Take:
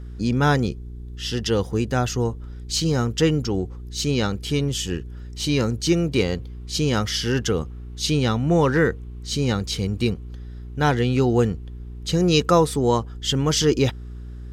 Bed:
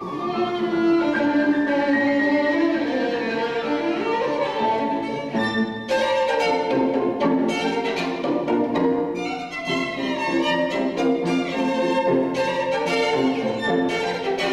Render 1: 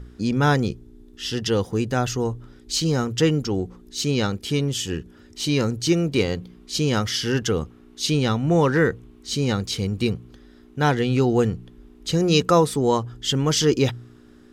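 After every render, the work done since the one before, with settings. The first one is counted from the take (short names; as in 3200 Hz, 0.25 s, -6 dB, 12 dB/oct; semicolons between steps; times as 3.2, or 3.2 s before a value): de-hum 60 Hz, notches 3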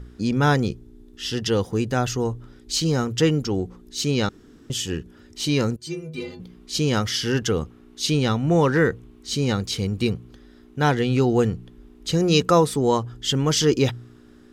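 4.29–4.7 room tone; 5.76–6.4 metallic resonator 74 Hz, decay 0.64 s, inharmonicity 0.03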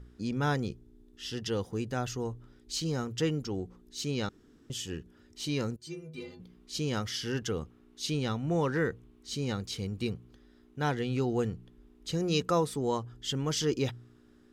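gain -10.5 dB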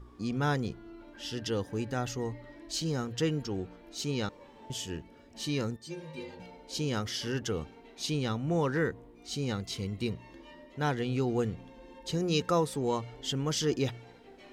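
add bed -31 dB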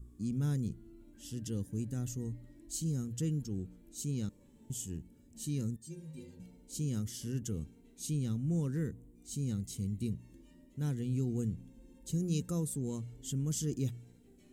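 EQ curve 210 Hz 0 dB, 820 Hz -24 dB, 5100 Hz -13 dB, 7600 Hz +4 dB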